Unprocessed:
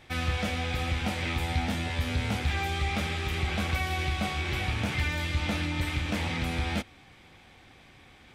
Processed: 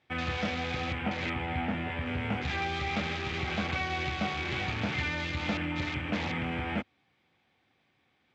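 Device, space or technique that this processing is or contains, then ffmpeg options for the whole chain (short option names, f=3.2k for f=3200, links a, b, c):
over-cleaned archive recording: -filter_complex "[0:a]asettb=1/sr,asplit=3[a][b][c];[a]atrim=end=0.984[d];[b]atrim=start=0.98:end=2.06,asetpts=PTS-STARTPTS,afade=t=in:d=0.004:c=qsin,afade=t=out:st=1.076:d=0.004:c=qsin,lowpass=5.1k[e];[c]atrim=start=2.056[f];[d][e]acrossfade=d=0.004:c1=hsin:c2=qsin[g];[g][f]acrossfade=d=0.004:c1=qsin:c2=hsin,highpass=120,lowpass=5.2k,afwtdn=0.0112"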